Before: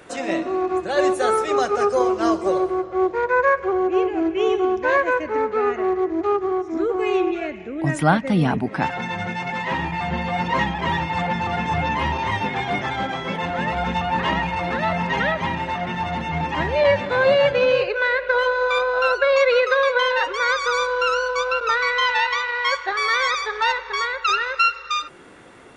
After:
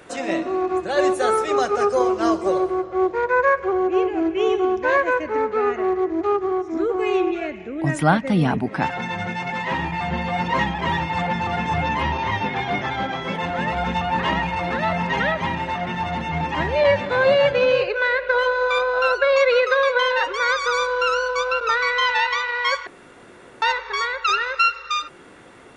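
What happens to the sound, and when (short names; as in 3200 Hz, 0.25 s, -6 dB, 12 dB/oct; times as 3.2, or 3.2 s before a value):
12.02–13.22 bell 8700 Hz -14.5 dB 0.36 oct
22.87–23.62 room tone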